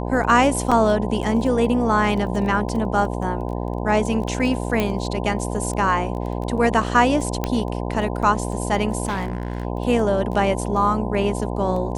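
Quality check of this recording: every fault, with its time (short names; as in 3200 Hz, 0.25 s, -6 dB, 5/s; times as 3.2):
buzz 60 Hz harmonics 17 -26 dBFS
crackle 12/s -28 dBFS
0.71–0.72 gap 5.9 ms
4.8 pop -8 dBFS
7.44 pop -8 dBFS
9.06–9.65 clipped -20.5 dBFS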